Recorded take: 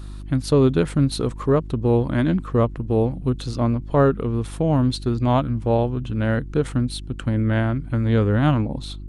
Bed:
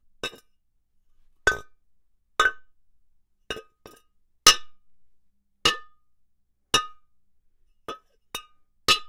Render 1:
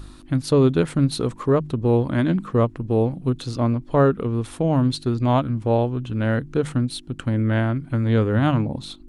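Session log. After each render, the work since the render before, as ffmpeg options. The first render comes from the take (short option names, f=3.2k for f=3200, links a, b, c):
-af "bandreject=f=50:t=h:w=4,bandreject=f=100:t=h:w=4,bandreject=f=150:t=h:w=4,bandreject=f=200:t=h:w=4"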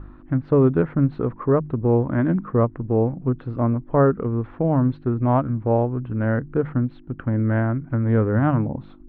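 -af "lowpass=f=1.8k:w=0.5412,lowpass=f=1.8k:w=1.3066"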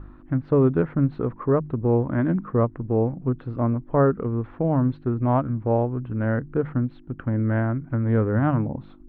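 -af "volume=-2dB"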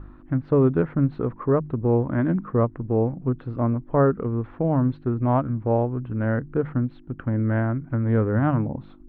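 -af anull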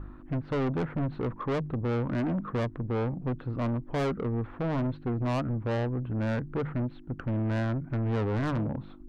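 -af "asoftclip=type=tanh:threshold=-26dB"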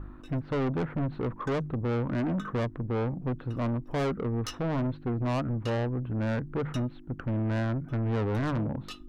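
-filter_complex "[1:a]volume=-24.5dB[a];[0:a][a]amix=inputs=2:normalize=0"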